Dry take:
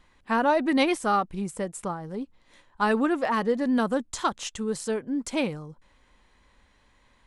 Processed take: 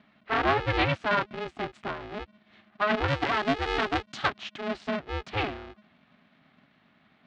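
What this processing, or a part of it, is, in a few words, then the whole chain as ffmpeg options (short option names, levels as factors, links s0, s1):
ring modulator pedal into a guitar cabinet: -filter_complex "[0:a]aeval=exprs='val(0)*sgn(sin(2*PI*210*n/s))':c=same,highpass=83,equalizer=f=190:t=q:w=4:g=-3,equalizer=f=480:t=q:w=4:g=-9,equalizer=f=960:t=q:w=4:g=-4,lowpass=f=3700:w=0.5412,lowpass=f=3700:w=1.3066,asettb=1/sr,asplit=3[s0][s1][s2];[s0]atrim=end=3.084[s3];[s1]atrim=start=3.08:end=4.28,asetpts=PTS-STARTPTS,afade=t=in:d=0.004:c=qsin,afade=t=out:st=1.196:d=0.004:c=qsin,aemphasis=mode=production:type=50kf[s4];[s2]atrim=start=4.276[s5];[s3][s4]acrossfade=d=0.004:c1=hsin:c2=qsin[s6];[s6][s5]acrossfade=d=0.004:c1=qsin:c2=hsin"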